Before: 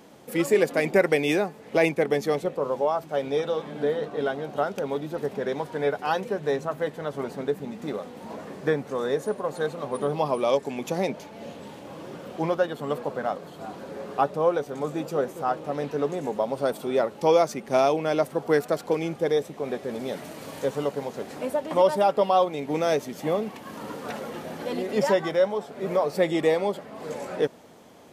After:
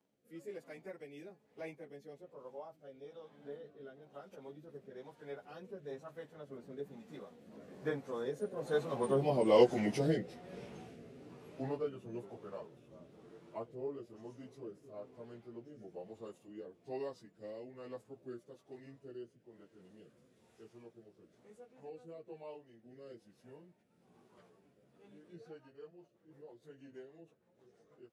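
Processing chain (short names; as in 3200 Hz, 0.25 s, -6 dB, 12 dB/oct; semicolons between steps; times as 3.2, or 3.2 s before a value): pitch shift by moving bins -2 st; Doppler pass-by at 9.56, 32 m/s, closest 16 m; rotary speaker horn 1.1 Hz, later 6.3 Hz, at 25.13; gain +2 dB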